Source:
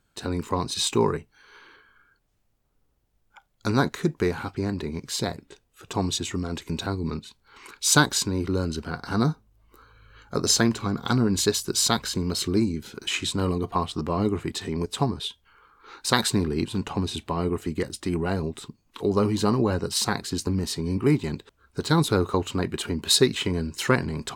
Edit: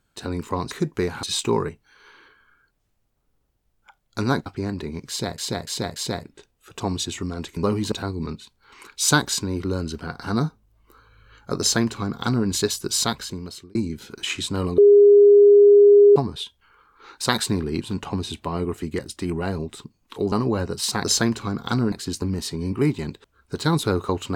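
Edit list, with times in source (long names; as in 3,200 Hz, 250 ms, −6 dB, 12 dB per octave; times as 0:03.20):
0:03.94–0:04.46: move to 0:00.71
0:05.09–0:05.38: repeat, 4 plays
0:10.43–0:11.31: duplicate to 0:20.17
0:11.85–0:12.59: fade out
0:13.62–0:15.00: beep over 408 Hz −8 dBFS
0:19.16–0:19.45: move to 0:06.76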